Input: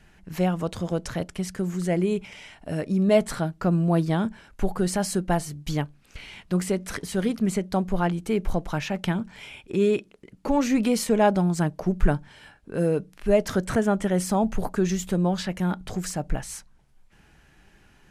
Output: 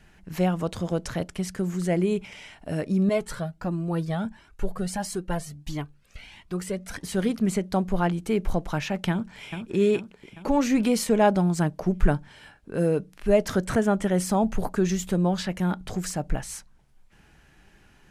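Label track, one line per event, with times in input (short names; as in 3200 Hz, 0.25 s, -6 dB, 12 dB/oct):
3.090000	7.040000	cascading flanger rising 1.5 Hz
9.100000	9.580000	echo throw 0.42 s, feedback 55%, level -7.5 dB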